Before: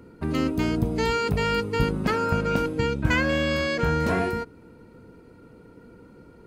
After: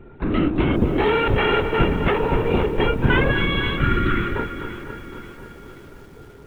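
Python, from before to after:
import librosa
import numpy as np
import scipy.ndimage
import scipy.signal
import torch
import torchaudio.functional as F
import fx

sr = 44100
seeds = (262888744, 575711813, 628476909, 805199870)

y = fx.lpc_vocoder(x, sr, seeds[0], excitation='whisper', order=16)
y = fx.notch(y, sr, hz=1400.0, q=5.8, at=(1.84, 2.86))
y = fx.spec_erase(y, sr, start_s=3.32, length_s=1.04, low_hz=390.0, high_hz=1100.0)
y = fx.echo_tape(y, sr, ms=254, feedback_pct=72, wet_db=-9.5, lp_hz=2500.0, drive_db=12.0, wow_cents=8)
y = fx.echo_crushed(y, sr, ms=532, feedback_pct=55, bits=8, wet_db=-14)
y = y * librosa.db_to_amplitude(5.0)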